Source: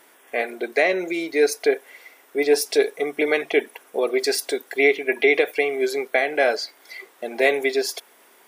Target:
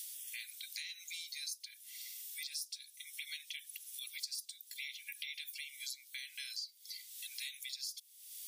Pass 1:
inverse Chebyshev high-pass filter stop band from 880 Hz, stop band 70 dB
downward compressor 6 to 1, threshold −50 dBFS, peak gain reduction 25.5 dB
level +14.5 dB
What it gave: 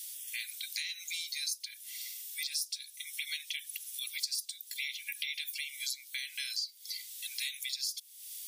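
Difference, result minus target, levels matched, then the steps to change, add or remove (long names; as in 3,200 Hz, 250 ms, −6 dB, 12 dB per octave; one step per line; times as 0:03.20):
downward compressor: peak gain reduction −7 dB
change: downward compressor 6 to 1, threshold −58.5 dBFS, peak gain reduction 32.5 dB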